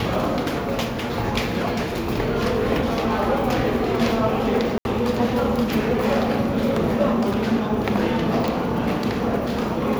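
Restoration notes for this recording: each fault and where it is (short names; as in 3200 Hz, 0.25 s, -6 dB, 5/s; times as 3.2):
4.78–4.85 gap 71 ms
8.48 pop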